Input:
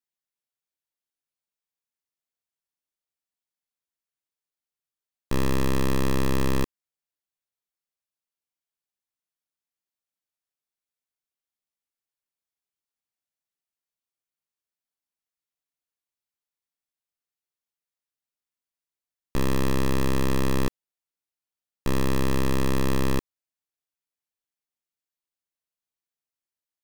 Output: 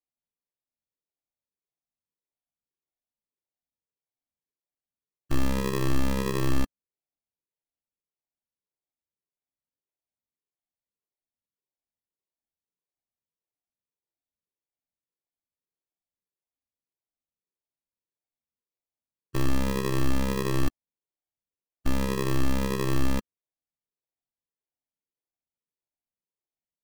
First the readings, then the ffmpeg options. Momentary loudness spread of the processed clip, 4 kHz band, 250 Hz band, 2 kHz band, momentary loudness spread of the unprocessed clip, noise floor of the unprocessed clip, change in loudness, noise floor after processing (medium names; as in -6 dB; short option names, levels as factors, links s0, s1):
6 LU, -2.0 dB, -2.0 dB, -2.0 dB, 6 LU, under -85 dBFS, -2.0 dB, under -85 dBFS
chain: -af "afftfilt=real='re*pow(10,19/40*sin(2*PI*(0.74*log(max(b,1)*sr/1024/100)/log(2)-(-1.7)*(pts-256)/sr)))':imag='im*pow(10,19/40*sin(2*PI*(0.74*log(max(b,1)*sr/1024/100)/log(2)-(-1.7)*(pts-256)/sr)))':win_size=1024:overlap=0.75,lowpass=1500,acrusher=samples=30:mix=1:aa=0.000001,volume=0.531"